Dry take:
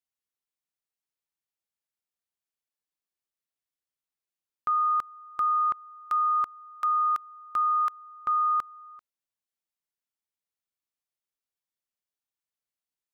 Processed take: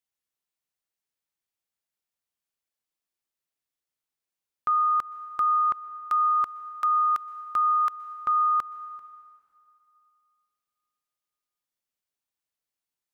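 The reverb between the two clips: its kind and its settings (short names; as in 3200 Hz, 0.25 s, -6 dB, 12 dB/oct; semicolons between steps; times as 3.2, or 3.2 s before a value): plate-style reverb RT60 2.6 s, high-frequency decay 0.95×, pre-delay 0.11 s, DRR 16 dB; gain +2 dB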